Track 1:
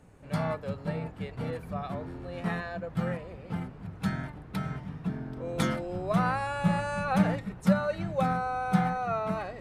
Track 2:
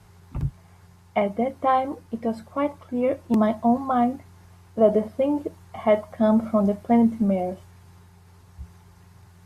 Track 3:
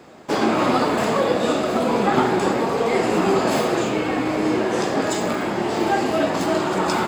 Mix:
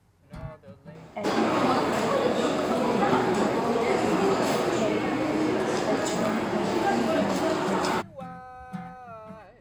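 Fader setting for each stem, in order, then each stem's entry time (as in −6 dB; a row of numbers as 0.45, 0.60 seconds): −12.0, −12.5, −5.0 decibels; 0.00, 0.00, 0.95 seconds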